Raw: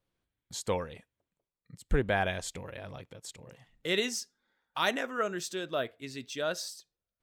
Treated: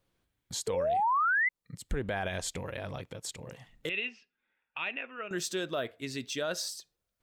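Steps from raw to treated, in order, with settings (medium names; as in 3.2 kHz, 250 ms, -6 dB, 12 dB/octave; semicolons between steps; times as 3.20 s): 0.67–1.49 s: painted sound rise 430–2100 Hz -28 dBFS; in parallel at 0 dB: compression, threshold -42 dBFS, peak gain reduction 20 dB; 3.89–5.31 s: on the sum: four-pole ladder low-pass 2.7 kHz, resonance 85%; peak limiter -23.5 dBFS, peak gain reduction 10 dB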